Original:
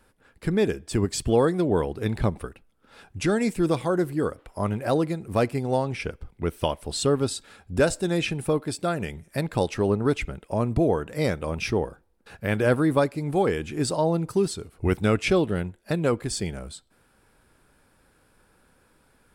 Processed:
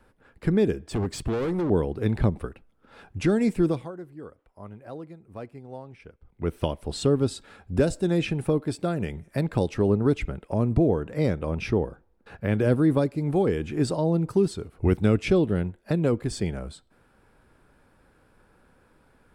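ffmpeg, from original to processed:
-filter_complex "[0:a]asettb=1/sr,asplit=3[s0][s1][s2];[s0]atrim=end=0.824[s3];[s1]atrim=start=0.82:end=1.7,asetpts=PTS-STARTPTS,afade=t=in:d=0.004:c=qsin,afade=t=out:st=0.876:d=0.004:c=qsin,asoftclip=type=hard:threshold=0.0562[s4];[s2]atrim=start=1.696[s5];[s3][s4]acrossfade=d=0.004:c1=hsin:c2=qsin[s6];[s6][s5]acrossfade=d=0.004:c1=qsin:c2=hsin,asettb=1/sr,asplit=3[s7][s8][s9];[s7]atrim=end=10.794[s10];[s8]atrim=start=10.79:end=12.6,asetpts=PTS-STARTPTS,afade=t=in:d=0.004:c=qsin,afade=t=out:st=1.806:d=0.004:c=qsin,highshelf=f=5300:g=-5[s11];[s9]atrim=start=12.596[s12];[s10][s11]acrossfade=d=0.004:c1=hsin:c2=qsin[s13];[s13][s12]acrossfade=d=0.004:c1=qsin:c2=hsin,asplit=3[s14][s15][s16];[s14]atrim=end=3.92,asetpts=PTS-STARTPTS,afade=t=out:st=3.61:d=0.31:silence=0.125893[s17];[s15]atrim=start=3.92:end=6.24,asetpts=PTS-STARTPTS,volume=0.126[s18];[s16]atrim=start=6.24,asetpts=PTS-STARTPTS,afade=t=in:d=0.31:silence=0.125893[s19];[s17][s18][s19]concat=n=3:v=0:a=1,highshelf=f=3300:g=-11.5,acrossover=split=460|3000[s20][s21][s22];[s21]acompressor=threshold=0.0158:ratio=3[s23];[s20][s23][s22]amix=inputs=3:normalize=0,volume=1.33"

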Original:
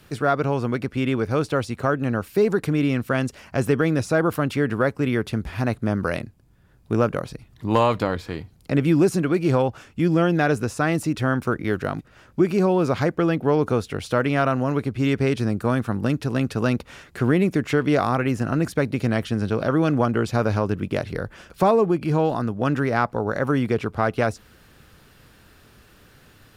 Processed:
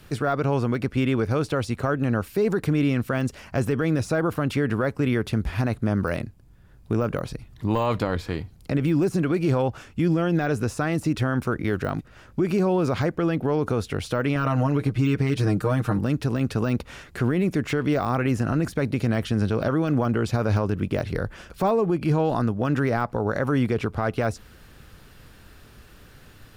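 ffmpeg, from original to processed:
-filter_complex "[0:a]asettb=1/sr,asplit=3[s0][s1][s2];[s0]atrim=end=14.354[s3];[s1]atrim=start=14.35:end=15.99,asetpts=PTS-STARTPTS,afade=t=in:d=0.004:c=qsin,afade=t=out:st=1.636:d=0.004:c=qsin,aecho=1:1:6.5:0.88,atrim=end_sample=72324[s4];[s2]atrim=start=15.986[s5];[s3][s4]acrossfade=d=0.004:c1=hsin:c2=qsin[s6];[s6][s5]acrossfade=d=0.004:c1=qsin:c2=hsin,deesser=0.75,lowshelf=f=60:g=9.5,alimiter=limit=0.178:level=0:latency=1:release=56,volume=1.12"

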